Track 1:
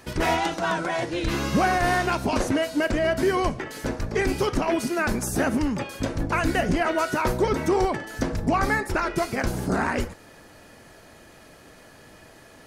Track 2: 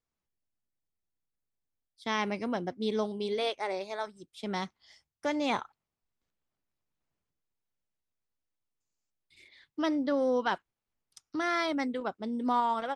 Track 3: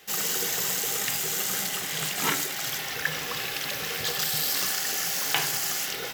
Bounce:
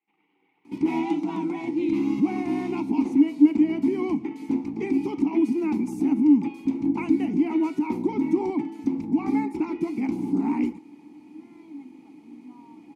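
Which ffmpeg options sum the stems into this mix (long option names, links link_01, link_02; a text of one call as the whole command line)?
ffmpeg -i stem1.wav -i stem2.wav -i stem3.wav -filter_complex "[0:a]highshelf=frequency=5000:gain=9.5,adelay=650,volume=2dB[link_01];[1:a]volume=-17.5dB[link_02];[2:a]alimiter=limit=-18.5dB:level=0:latency=1:release=51,lowpass=frequency=2600:width=0.5412,lowpass=frequency=2600:width=1.3066,volume=-17.5dB[link_03];[link_01][link_02]amix=inputs=2:normalize=0,equalizer=frequency=220:width=0.79:gain=15,alimiter=limit=-5dB:level=0:latency=1:release=139,volume=0dB[link_04];[link_03][link_04]amix=inputs=2:normalize=0,asplit=3[link_05][link_06][link_07];[link_05]bandpass=frequency=300:width_type=q:width=8,volume=0dB[link_08];[link_06]bandpass=frequency=870:width_type=q:width=8,volume=-6dB[link_09];[link_07]bandpass=frequency=2240:width_type=q:width=8,volume=-9dB[link_10];[link_08][link_09][link_10]amix=inputs=3:normalize=0,highshelf=frequency=6000:gain=8" out.wav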